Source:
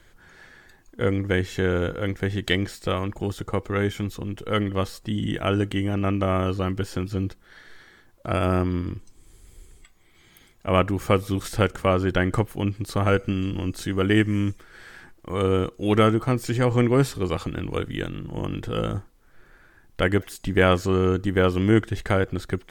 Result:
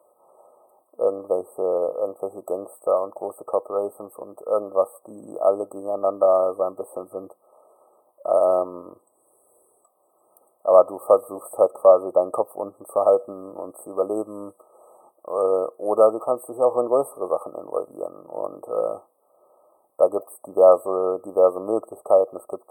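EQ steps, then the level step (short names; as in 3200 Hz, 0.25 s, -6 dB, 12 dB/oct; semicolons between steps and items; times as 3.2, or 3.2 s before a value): resonant high-pass 590 Hz, resonance Q 4.9; brick-wall FIR band-stop 1300–7900 Hz; -1.0 dB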